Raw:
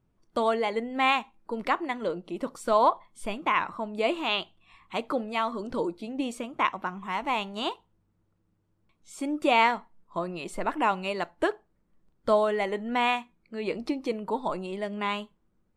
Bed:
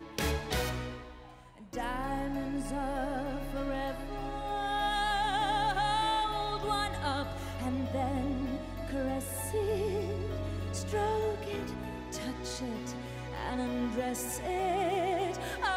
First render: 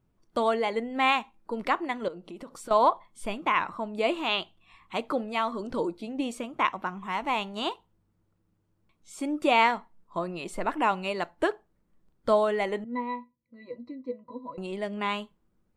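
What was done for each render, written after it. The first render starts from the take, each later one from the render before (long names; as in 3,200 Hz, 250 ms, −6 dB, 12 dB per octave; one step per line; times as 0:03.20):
0:02.08–0:02.71: downward compressor 4 to 1, threshold −39 dBFS
0:12.84–0:14.58: resonances in every octave B, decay 0.11 s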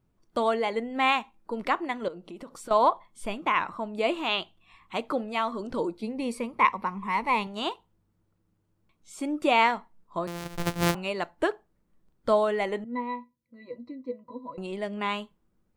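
0:06.02–0:07.47: EQ curve with evenly spaced ripples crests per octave 0.9, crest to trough 11 dB
0:10.27–0:10.95: samples sorted by size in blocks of 256 samples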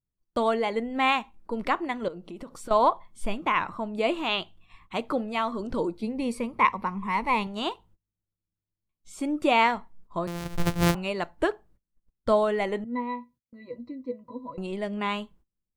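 noise gate −58 dBFS, range −24 dB
low-shelf EQ 130 Hz +11 dB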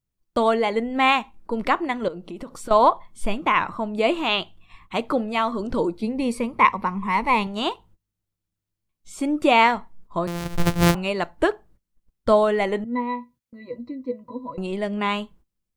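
level +5 dB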